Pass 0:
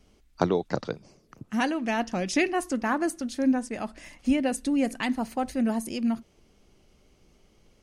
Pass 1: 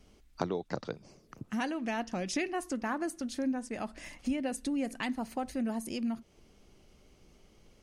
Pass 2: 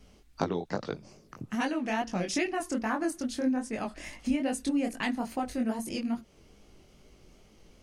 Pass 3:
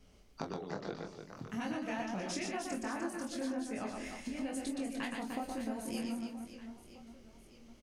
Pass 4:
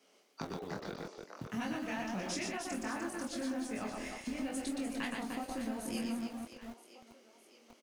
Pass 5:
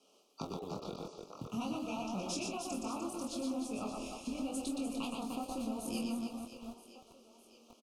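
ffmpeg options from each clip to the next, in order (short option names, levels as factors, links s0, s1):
-af "acompressor=threshold=0.0158:ratio=2"
-af "flanger=delay=18.5:depth=5.8:speed=2.4,volume=2.11"
-filter_complex "[0:a]acompressor=threshold=0.0282:ratio=6,asplit=2[s0][s1];[s1]adelay=26,volume=0.447[s2];[s0][s2]amix=inputs=2:normalize=0,aecho=1:1:120|300|570|975|1582:0.631|0.398|0.251|0.158|0.1,volume=0.501"
-filter_complex "[0:a]acrossover=split=290|1000|2300[s0][s1][s2][s3];[s0]aeval=exprs='val(0)*gte(abs(val(0)),0.00376)':c=same[s4];[s1]alimiter=level_in=5.96:limit=0.0631:level=0:latency=1,volume=0.168[s5];[s4][s5][s2][s3]amix=inputs=4:normalize=0,volume=1.19"
-af "asuperstop=centerf=1800:order=12:qfactor=1.7,aecho=1:1:420|840|1260|1680:0.1|0.047|0.0221|0.0104" -ar 44100 -c:a sbc -b:a 128k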